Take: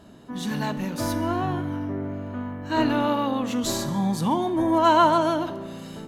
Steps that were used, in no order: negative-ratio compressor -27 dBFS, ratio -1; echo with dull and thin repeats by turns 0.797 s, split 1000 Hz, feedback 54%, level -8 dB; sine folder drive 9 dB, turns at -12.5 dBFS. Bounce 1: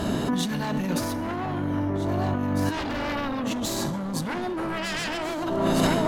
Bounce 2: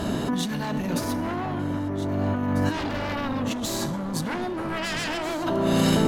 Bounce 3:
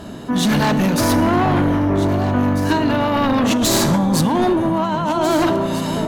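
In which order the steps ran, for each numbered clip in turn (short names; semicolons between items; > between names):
sine folder > echo with dull and thin repeats by turns > negative-ratio compressor; sine folder > negative-ratio compressor > echo with dull and thin repeats by turns; negative-ratio compressor > sine folder > echo with dull and thin repeats by turns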